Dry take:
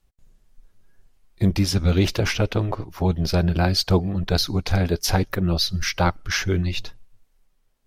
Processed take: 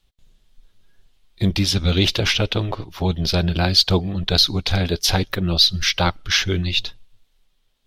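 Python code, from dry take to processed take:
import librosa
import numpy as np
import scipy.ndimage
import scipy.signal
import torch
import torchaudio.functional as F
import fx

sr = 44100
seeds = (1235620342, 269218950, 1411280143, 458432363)

y = fx.peak_eq(x, sr, hz=3500.0, db=13.0, octaves=0.9)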